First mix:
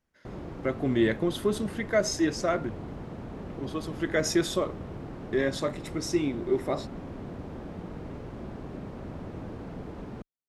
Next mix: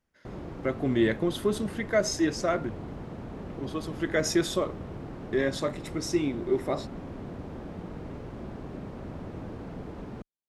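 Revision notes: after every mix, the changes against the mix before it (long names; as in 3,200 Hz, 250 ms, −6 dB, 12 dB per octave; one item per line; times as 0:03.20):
nothing changed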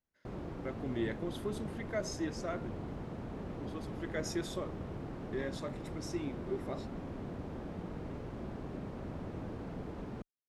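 speech −12.0 dB
background −3.0 dB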